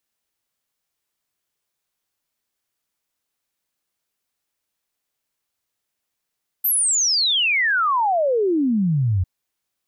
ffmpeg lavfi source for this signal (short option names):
-f lavfi -i "aevalsrc='0.158*clip(min(t,2.6-t)/0.01,0,1)*sin(2*PI*13000*2.6/log(86/13000)*(exp(log(86/13000)*t/2.6)-1))':d=2.6:s=44100"